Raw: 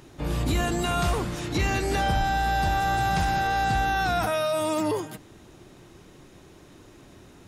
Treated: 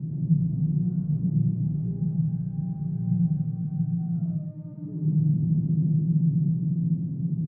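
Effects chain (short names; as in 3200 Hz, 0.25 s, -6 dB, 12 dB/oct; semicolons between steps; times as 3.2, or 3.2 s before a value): infinite clipping; Doppler pass-by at 3.04, 9 m/s, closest 7.1 m; bell 160 Hz +10.5 dB 0.25 oct; echo 0.136 s -6 dB; reverb RT60 0.30 s, pre-delay 84 ms, DRR -1 dB; vocal rider within 4 dB 0.5 s; Butterworth band-pass 160 Hz, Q 2.1; gain +7.5 dB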